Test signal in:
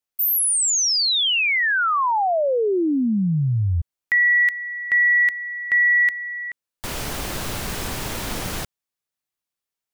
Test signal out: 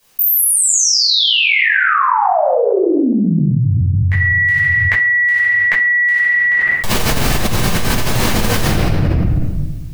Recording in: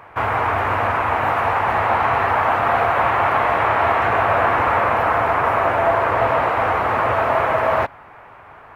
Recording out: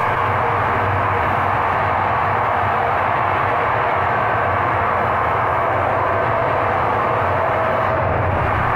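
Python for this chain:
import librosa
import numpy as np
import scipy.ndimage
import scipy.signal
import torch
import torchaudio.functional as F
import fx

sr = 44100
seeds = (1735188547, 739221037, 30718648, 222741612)

y = fx.room_shoebox(x, sr, seeds[0], volume_m3=590.0, walls='mixed', distance_m=5.5)
y = fx.env_flatten(y, sr, amount_pct=100)
y = y * librosa.db_to_amplitude(-14.5)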